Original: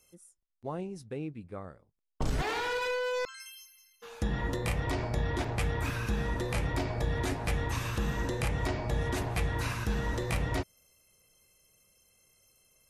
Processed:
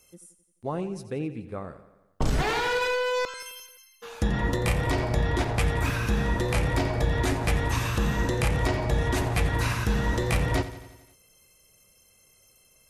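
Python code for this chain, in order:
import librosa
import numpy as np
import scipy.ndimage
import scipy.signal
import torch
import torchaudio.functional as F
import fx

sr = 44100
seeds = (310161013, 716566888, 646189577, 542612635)

y = fx.echo_feedback(x, sr, ms=87, feedback_pct=60, wet_db=-14)
y = F.gain(torch.from_numpy(y), 6.0).numpy()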